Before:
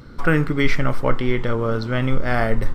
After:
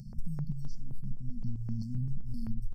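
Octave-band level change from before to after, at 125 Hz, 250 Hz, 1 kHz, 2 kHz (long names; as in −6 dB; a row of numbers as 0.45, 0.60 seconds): −12.5 dB, −17.0 dB, below −35 dB, below −40 dB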